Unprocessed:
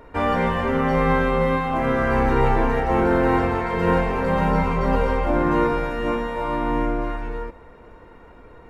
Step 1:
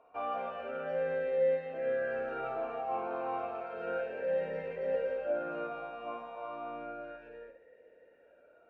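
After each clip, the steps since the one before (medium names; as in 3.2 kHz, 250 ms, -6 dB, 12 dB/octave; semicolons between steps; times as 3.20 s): on a send: flutter echo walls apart 9.4 m, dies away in 0.43 s; on the sum: talking filter a-e 0.32 Hz; trim -4.5 dB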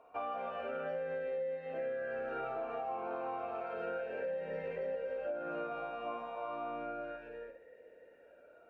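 compression 12:1, threshold -37 dBFS, peak gain reduction 12.5 dB; trim +2 dB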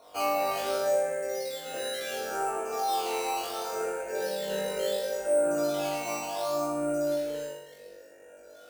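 decimation with a swept rate 9×, swing 100% 0.7 Hz; on a send: flutter echo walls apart 3.5 m, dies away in 0.75 s; on the sum: trim +4 dB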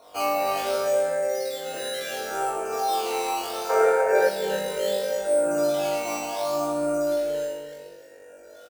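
time-frequency box 3.70–4.29 s, 370–2400 Hz +10 dB; echo from a far wall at 51 m, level -9 dB; trim +3 dB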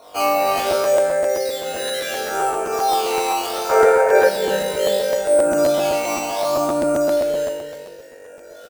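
crackling interface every 0.13 s, samples 512, repeat, from 0.57 s; trim +6.5 dB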